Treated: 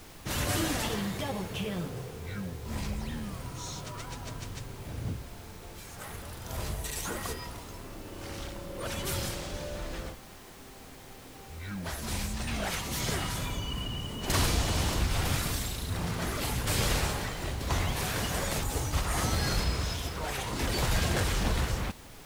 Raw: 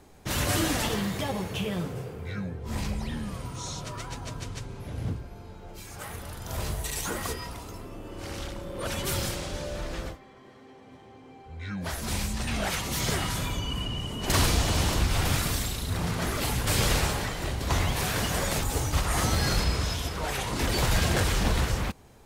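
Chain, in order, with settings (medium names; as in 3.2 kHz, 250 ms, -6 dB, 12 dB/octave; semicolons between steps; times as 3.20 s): added noise pink -46 dBFS; trim -3.5 dB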